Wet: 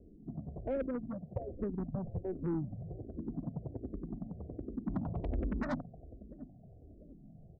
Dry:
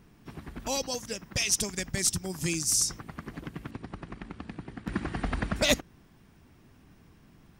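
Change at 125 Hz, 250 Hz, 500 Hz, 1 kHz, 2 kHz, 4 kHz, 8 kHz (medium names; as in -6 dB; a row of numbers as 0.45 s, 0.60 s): -2.0 dB, -1.5 dB, -4.5 dB, -9.0 dB, -18.5 dB, under -35 dB, under -40 dB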